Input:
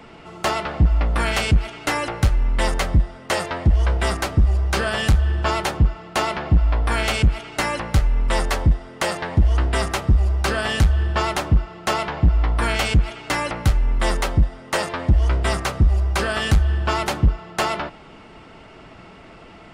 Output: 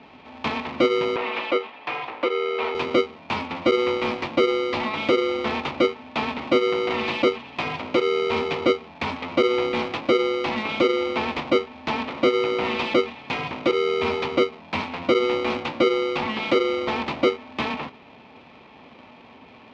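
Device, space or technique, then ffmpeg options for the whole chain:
ring modulator pedal into a guitar cabinet: -filter_complex "[0:a]aeval=exprs='val(0)*sgn(sin(2*PI*430*n/s))':channel_layout=same,highpass=84,equalizer=frequency=250:width_type=q:width=4:gain=8,equalizer=frequency=910:width_type=q:width=4:gain=5,equalizer=frequency=1600:width_type=q:width=4:gain=-9,equalizer=frequency=2400:width_type=q:width=4:gain=6,lowpass=frequency=4100:width=0.5412,lowpass=frequency=4100:width=1.3066,asettb=1/sr,asplit=3[link_01][link_02][link_03];[link_01]atrim=end=1.164[link_04];[link_02]atrim=start=1.16:end=2.75,asetpts=PTS-STARTPTS,afade=type=in:duration=0.004:curve=qsin,afade=type=out:start_time=1.586:duration=0.004:curve=qsin,acrossover=split=350 3400:gain=0.126 1 0.224[link_05][link_06][link_07];[link_05][link_06][link_07]amix=inputs=3:normalize=0[link_08];[link_03]atrim=start=2.746[link_09];[link_04][link_08]acrossfade=duration=0.004:curve1=hsin:curve2=qsin[link_10];[link_10][link_09]acrossfade=duration=0.004:curve1=qsin:curve2=hsin,volume=-5.5dB"

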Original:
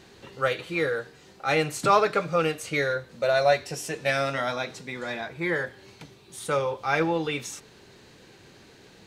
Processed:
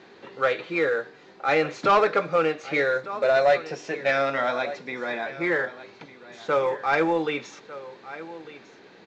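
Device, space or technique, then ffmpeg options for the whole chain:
telephone: -af "highpass=250,lowpass=3100,equalizer=frequency=2900:width_type=o:width=0.24:gain=-5,aecho=1:1:1200:0.141,asoftclip=type=tanh:threshold=-15.5dB,volume=4dB" -ar 16000 -c:a pcm_mulaw

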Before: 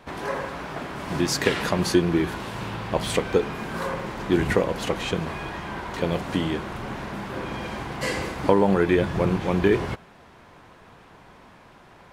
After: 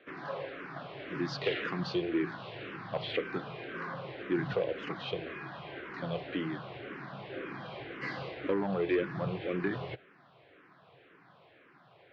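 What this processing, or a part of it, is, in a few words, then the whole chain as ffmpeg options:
barber-pole phaser into a guitar amplifier: -filter_complex "[0:a]acrossover=split=150 5500:gain=0.224 1 0.0794[link_01][link_02][link_03];[link_01][link_02][link_03]amix=inputs=3:normalize=0,asplit=2[link_04][link_05];[link_05]afreqshift=-1.9[link_06];[link_04][link_06]amix=inputs=2:normalize=1,asoftclip=type=tanh:threshold=-15.5dB,highpass=91,equalizer=frequency=130:width_type=q:width=4:gain=6,equalizer=frequency=220:width_type=q:width=4:gain=-9,equalizer=frequency=920:width_type=q:width=4:gain=-9,lowpass=frequency=4300:width=0.5412,lowpass=frequency=4300:width=1.3066,volume=-4.5dB"

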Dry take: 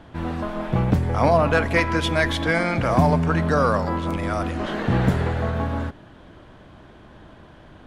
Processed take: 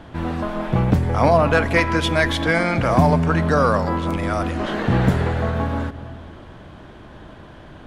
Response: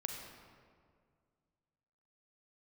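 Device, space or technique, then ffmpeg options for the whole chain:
ducked reverb: -filter_complex "[0:a]asplit=3[link_01][link_02][link_03];[1:a]atrim=start_sample=2205[link_04];[link_02][link_04]afir=irnorm=-1:irlink=0[link_05];[link_03]apad=whole_len=346729[link_06];[link_05][link_06]sidechaincompress=threshold=-37dB:ratio=8:attack=16:release=106,volume=-6.5dB[link_07];[link_01][link_07]amix=inputs=2:normalize=0,volume=2dB"

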